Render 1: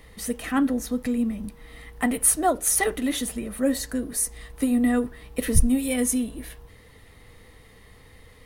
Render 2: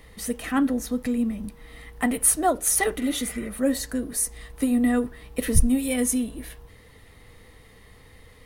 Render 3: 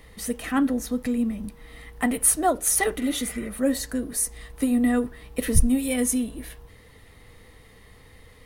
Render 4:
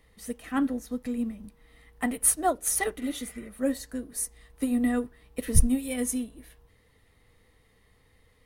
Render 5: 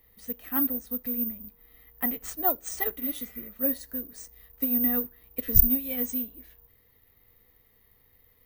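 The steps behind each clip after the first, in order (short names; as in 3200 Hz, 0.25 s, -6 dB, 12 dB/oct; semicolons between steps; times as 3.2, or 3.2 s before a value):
spectral repair 3.01–3.47, 960–2600 Hz before
nothing audible
upward expander 1.5:1, over -36 dBFS
careless resampling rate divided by 3×, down filtered, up zero stuff; gain -4.5 dB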